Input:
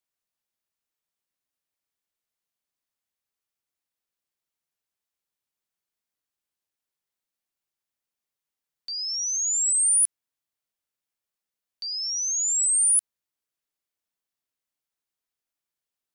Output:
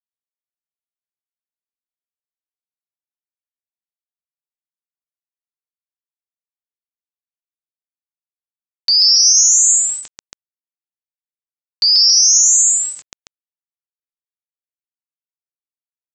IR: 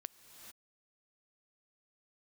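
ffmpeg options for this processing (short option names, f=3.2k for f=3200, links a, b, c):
-filter_complex "[0:a]asplit=2[a][b];[b]aecho=0:1:137|277:0.891|0.562[c];[a][c]amix=inputs=2:normalize=0,acompressor=threshold=-23dB:ratio=6,aeval=exprs='val(0)*sin(2*PI*130*n/s)':c=same,aresample=16000,aeval=exprs='val(0)*gte(abs(val(0)),0.00178)':c=same,aresample=44100,acontrast=38,alimiter=level_in=18dB:limit=-1dB:release=50:level=0:latency=1,volume=-1dB"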